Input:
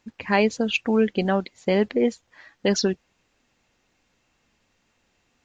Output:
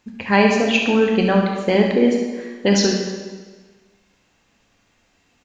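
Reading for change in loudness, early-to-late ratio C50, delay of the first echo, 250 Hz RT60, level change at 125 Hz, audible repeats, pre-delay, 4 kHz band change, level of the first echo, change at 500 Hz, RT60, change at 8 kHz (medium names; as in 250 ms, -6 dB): +5.5 dB, 2.0 dB, 70 ms, 1.5 s, +7.0 dB, 1, 7 ms, +6.5 dB, -9.0 dB, +5.0 dB, 1.4 s, no reading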